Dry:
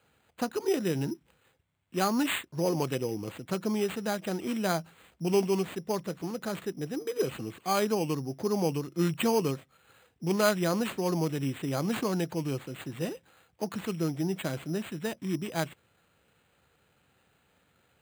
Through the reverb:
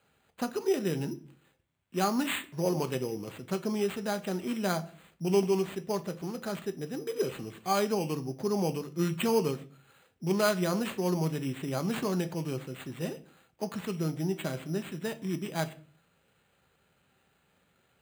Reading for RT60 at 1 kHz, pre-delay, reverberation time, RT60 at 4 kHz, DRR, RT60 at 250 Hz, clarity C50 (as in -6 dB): 0.40 s, 5 ms, 0.45 s, 0.35 s, 9.0 dB, 0.60 s, 18.0 dB